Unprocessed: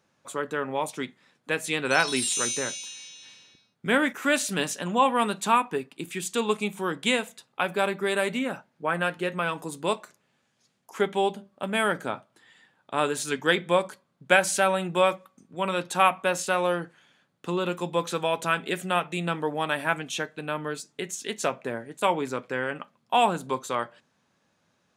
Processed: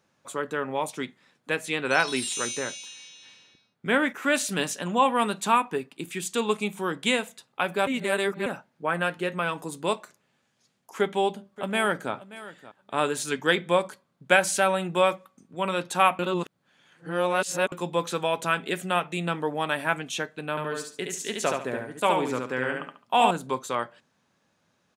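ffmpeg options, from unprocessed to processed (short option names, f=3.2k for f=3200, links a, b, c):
-filter_complex "[0:a]asettb=1/sr,asplit=3[a][b][c];[a]atrim=end=1.564[d];[b]atrim=start=1.56:end=4.35,asetpts=PTS-STARTPTS,afade=t=in:d=0.004:c=qsin,afade=t=out:st=2.786:d=0.004:c=qsin,bass=f=250:g=-2,treble=f=4k:g=-5[e];[c]atrim=start=4.346[f];[d][e]acrossfade=d=0.004:c1=hsin:c2=qsin[g];[g][f]acrossfade=d=0.004:c1=qsin:c2=hsin,asplit=2[h][i];[i]afade=t=in:st=10.98:d=0.01,afade=t=out:st=12.13:d=0.01,aecho=0:1:580|1160:0.141254|0.0141254[j];[h][j]amix=inputs=2:normalize=0,asettb=1/sr,asplit=3[k][l][m];[k]atrim=end=20.504[n];[l]atrim=start=20.5:end=23.31,asetpts=PTS-STARTPTS,afade=t=in:d=0.004:c=qsin,afade=t=out:st=2.806:d=0.004:c=qsin,aecho=1:1:71|142|213|284:0.668|0.187|0.0524|0.0147,atrim=end_sample=123921[o];[m]atrim=start=23.306[p];[n][o]acrossfade=d=0.004:c1=hsin:c2=qsin[q];[q][p]acrossfade=d=0.004:c1=qsin:c2=hsin,asplit=5[r][s][t][u][v];[r]atrim=end=7.872[w];[s]atrim=start=7.868:end=8.462,asetpts=PTS-STARTPTS,areverse[x];[t]atrim=start=8.458:end=16.192[y];[u]atrim=start=16.188:end=17.722,asetpts=PTS-STARTPTS,areverse[z];[v]atrim=start=17.718[aa];[w][x]acrossfade=d=0.004:c1=hsin:c2=hsin[ab];[ab][y]acrossfade=d=0.004:c1=hsin:c2=hsin[ac];[ac][z]acrossfade=d=0.004:c1=hsin:c2=hsin[ad];[ad][aa]acrossfade=d=0.004:c1=hsin:c2=hsin"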